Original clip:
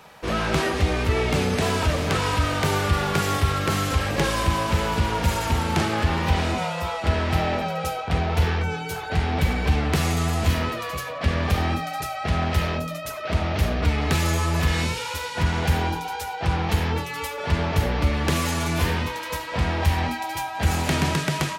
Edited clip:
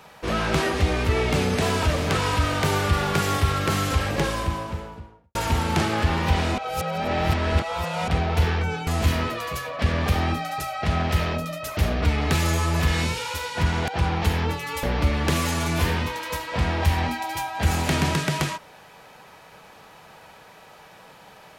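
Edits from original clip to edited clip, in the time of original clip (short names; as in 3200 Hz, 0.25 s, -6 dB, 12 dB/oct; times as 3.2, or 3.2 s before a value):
3.92–5.35 studio fade out
6.58–8.08 reverse
8.87–10.29 cut
13.19–13.57 cut
15.68–16.35 cut
17.3–17.83 cut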